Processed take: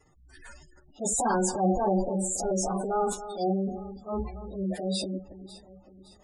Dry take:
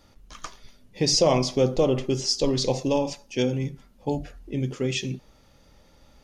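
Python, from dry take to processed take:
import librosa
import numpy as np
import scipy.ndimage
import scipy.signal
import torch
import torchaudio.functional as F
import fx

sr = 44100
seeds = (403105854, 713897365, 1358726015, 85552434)

y = fx.pitch_bins(x, sr, semitones=6.5)
y = fx.transient(y, sr, attack_db=-8, sustain_db=9)
y = fx.echo_alternate(y, sr, ms=281, hz=2100.0, feedback_pct=64, wet_db=-13)
y = fx.spec_gate(y, sr, threshold_db=-20, keep='strong')
y = y * librosa.db_to_amplitude(-1.5)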